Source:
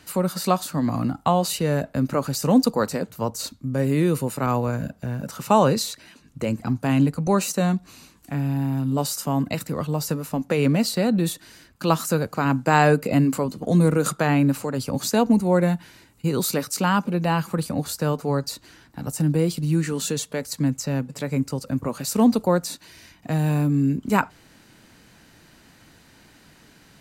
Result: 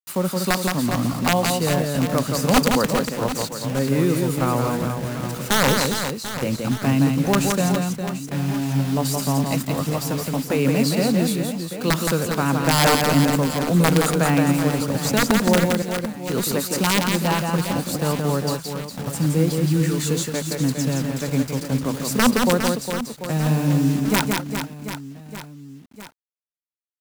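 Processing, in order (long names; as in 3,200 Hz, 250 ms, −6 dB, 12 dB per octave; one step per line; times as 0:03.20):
0:15.65–0:16.30: Butterworth high-pass 1,900 Hz
bit reduction 6 bits
wrap-around overflow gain 9.5 dB
reverse bouncing-ball delay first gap 170 ms, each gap 1.4×, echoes 5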